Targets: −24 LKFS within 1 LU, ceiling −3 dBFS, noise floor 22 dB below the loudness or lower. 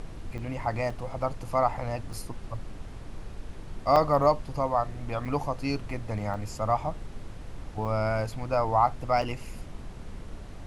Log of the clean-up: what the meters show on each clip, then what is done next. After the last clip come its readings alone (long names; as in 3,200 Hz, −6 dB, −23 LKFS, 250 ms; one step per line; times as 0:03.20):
number of dropouts 8; longest dropout 4.3 ms; background noise floor −42 dBFS; target noise floor −51 dBFS; integrated loudness −29.0 LKFS; sample peak −9.5 dBFS; target loudness −24.0 LKFS
→ repair the gap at 0:00.38/0:00.90/0:02.13/0:03.96/0:05.25/0:06.34/0:07.85/0:09.22, 4.3 ms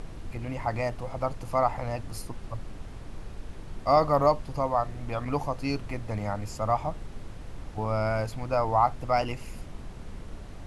number of dropouts 0; background noise floor −42 dBFS; target noise floor −51 dBFS
→ noise reduction from a noise print 9 dB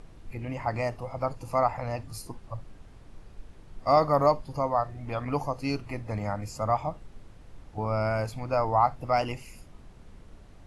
background noise floor −51 dBFS; integrated loudness −28.5 LKFS; sample peak −9.5 dBFS; target loudness −24.0 LKFS
→ level +4.5 dB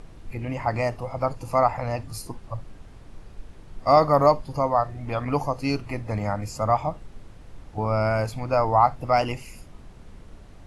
integrated loudness −24.0 LKFS; sample peak −5.0 dBFS; background noise floor −46 dBFS